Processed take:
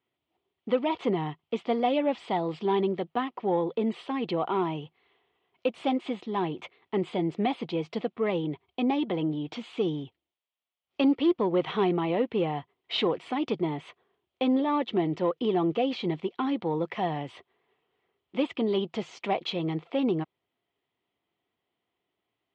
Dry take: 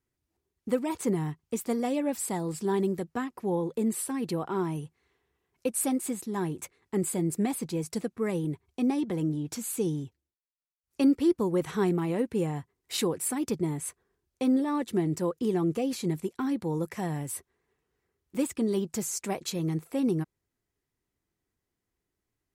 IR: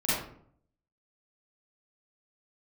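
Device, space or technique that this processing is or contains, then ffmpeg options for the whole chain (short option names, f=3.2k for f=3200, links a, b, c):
overdrive pedal into a guitar cabinet: -filter_complex "[0:a]asplit=2[a][b];[b]highpass=f=720:p=1,volume=13dB,asoftclip=type=tanh:threshold=-13.5dB[c];[a][c]amix=inputs=2:normalize=0,lowpass=f=3.5k:p=1,volume=-6dB,highpass=100,equalizer=f=690:t=q:w=4:g=5,equalizer=f=1.6k:t=q:w=4:g=-9,equalizer=f=3.2k:t=q:w=4:g=8,lowpass=f=3.6k:w=0.5412,lowpass=f=3.6k:w=1.3066"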